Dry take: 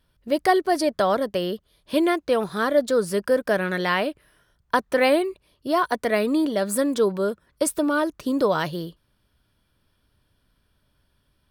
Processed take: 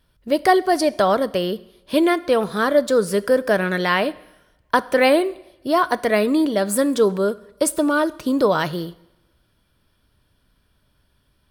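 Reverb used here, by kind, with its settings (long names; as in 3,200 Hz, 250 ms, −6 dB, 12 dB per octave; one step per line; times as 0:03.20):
coupled-rooms reverb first 0.8 s, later 2 s, from −23 dB, DRR 16.5 dB
level +3.5 dB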